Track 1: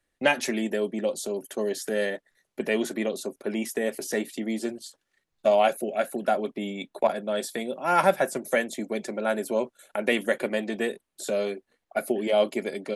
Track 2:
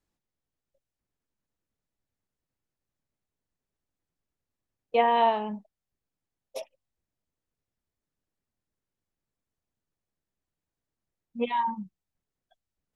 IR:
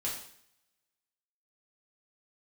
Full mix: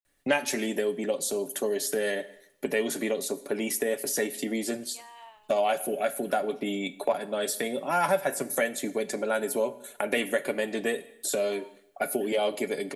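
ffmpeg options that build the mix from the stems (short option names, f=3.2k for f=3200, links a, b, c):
-filter_complex "[0:a]highshelf=f=9.7k:g=11.5,aecho=1:1:7:0.42,adelay=50,volume=3dB,asplit=2[a][b];[b]volume=-14.5dB[c];[1:a]highpass=1.3k,volume=-18.5dB[d];[2:a]atrim=start_sample=2205[e];[c][e]afir=irnorm=-1:irlink=0[f];[a][d][f]amix=inputs=3:normalize=0,acompressor=threshold=-29dB:ratio=2"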